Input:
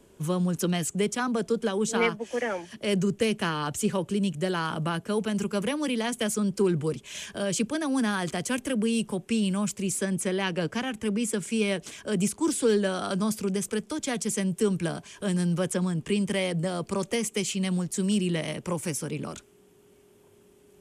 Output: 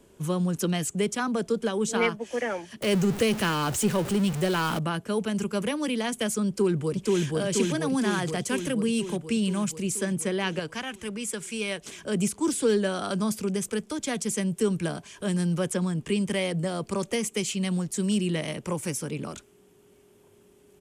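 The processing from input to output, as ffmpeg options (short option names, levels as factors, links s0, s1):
-filter_complex "[0:a]asettb=1/sr,asplit=3[s0][s1][s2];[s0]atrim=end=2.824[s3];[s1]atrim=start=2.82:end=4.79,asetpts=PTS-STARTPTS,afade=t=in:d=0.004:c=qsin,afade=t=out:st=1.966:d=0.004:c=qsin,aeval=exprs='val(0)+0.5*0.0355*sgn(val(0))':c=same[s4];[s2]atrim=start=4.786[s5];[s3][s4]acrossfade=d=0.004:c1=hsin:c2=qsin[s6];[s6][s5]acrossfade=d=0.004:c1=qsin:c2=hsin,asplit=2[s7][s8];[s8]afade=t=in:st=6.47:d=0.01,afade=t=out:st=7.24:d=0.01,aecho=0:1:480|960|1440|1920|2400|2880|3360|3840|4320|4800|5280|5760:0.944061|0.660843|0.46259|0.323813|0.226669|0.158668|0.111068|0.0777475|0.0544232|0.0380963|0.0266674|0.0186672[s9];[s7][s9]amix=inputs=2:normalize=0,asettb=1/sr,asplit=3[s10][s11][s12];[s10]atrim=end=10.594[s13];[s11]atrim=start=10.59:end=11.84,asetpts=PTS-STARTPTS,afade=t=in:d=0.004:c=qsin,afade=t=out:st=1.246:d=0.004:c=qsin,equalizer=f=220:w=0.45:g=-8[s14];[s12]atrim=start=11.836[s15];[s13][s14]acrossfade=d=0.004:c1=hsin:c2=qsin[s16];[s16][s15]acrossfade=d=0.004:c1=qsin:c2=hsin"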